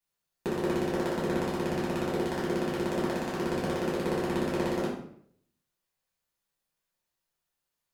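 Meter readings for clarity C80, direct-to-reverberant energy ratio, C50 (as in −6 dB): 7.5 dB, −7.0 dB, 3.5 dB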